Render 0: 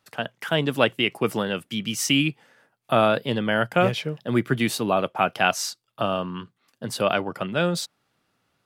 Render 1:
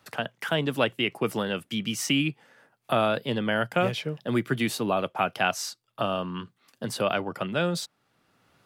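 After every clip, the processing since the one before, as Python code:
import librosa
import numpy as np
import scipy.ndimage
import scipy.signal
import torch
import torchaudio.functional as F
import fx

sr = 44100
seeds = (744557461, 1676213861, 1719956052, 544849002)

y = fx.band_squash(x, sr, depth_pct=40)
y = y * 10.0 ** (-3.5 / 20.0)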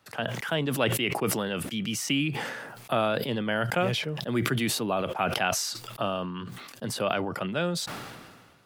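y = fx.sustainer(x, sr, db_per_s=36.0)
y = y * 10.0 ** (-2.5 / 20.0)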